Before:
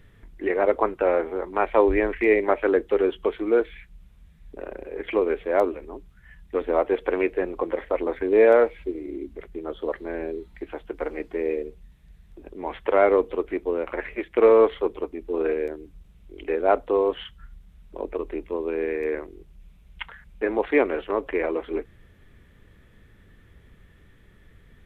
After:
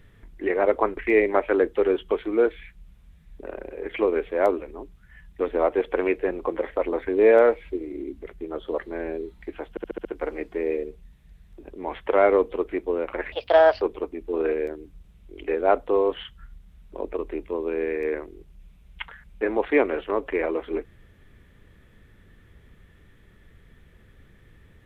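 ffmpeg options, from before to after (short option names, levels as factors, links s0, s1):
-filter_complex "[0:a]asplit=9[s0][s1][s2][s3][s4][s5][s6][s7][s8];[s0]atrim=end=0.972[s9];[s1]atrim=start=2.108:end=10.912[s10];[s2]atrim=start=10.838:end=10.912[s11];[s3]atrim=start=10.838:end=10.912[s12];[s4]atrim=start=10.838:end=10.912[s13];[s5]atrim=start=10.838:end=10.912[s14];[s6]atrim=start=10.838:end=14.114[s15];[s7]atrim=start=14.11:end=14.82,asetpts=PTS-STARTPTS,asetrate=63063,aresample=44100[s16];[s8]atrim=start=14.816[s17];[s9][s10]acrossfade=d=0.004:c1=hsin:c2=hsin[s18];[s18][s11]acrossfade=d=0.004:c1=hsin:c2=hsin[s19];[s19][s12]acrossfade=d=0.004:c1=hsin:c2=hsin[s20];[s20][s13]acrossfade=d=0.004:c1=hsin:c2=hsin[s21];[s21][s14]acrossfade=d=0.004:c1=hsin:c2=hsin[s22];[s22][s15]acrossfade=d=0.004:c1=hsin:c2=hsin[s23];[s23][s16]acrossfade=d=0.004:c1=hsin:c2=hsin[s24];[s24][s17]acrossfade=d=0.004:c1=hsin:c2=hsin"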